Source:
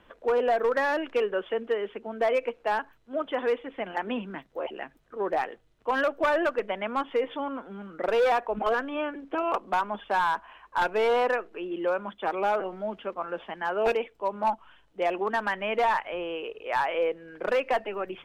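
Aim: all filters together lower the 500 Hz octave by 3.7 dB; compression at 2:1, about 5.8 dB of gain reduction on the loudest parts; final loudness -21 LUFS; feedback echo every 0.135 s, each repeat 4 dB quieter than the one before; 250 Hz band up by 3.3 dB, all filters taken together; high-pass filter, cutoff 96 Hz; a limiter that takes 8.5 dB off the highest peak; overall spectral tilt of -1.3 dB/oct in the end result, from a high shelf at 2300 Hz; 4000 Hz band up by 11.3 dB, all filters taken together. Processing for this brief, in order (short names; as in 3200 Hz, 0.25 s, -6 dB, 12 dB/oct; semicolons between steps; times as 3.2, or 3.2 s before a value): HPF 96 Hz; bell 250 Hz +6.5 dB; bell 500 Hz -6.5 dB; high shelf 2300 Hz +9 dB; bell 4000 Hz +8 dB; compressor 2:1, threshold -30 dBFS; limiter -24 dBFS; feedback echo 0.135 s, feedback 63%, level -4 dB; gain +11 dB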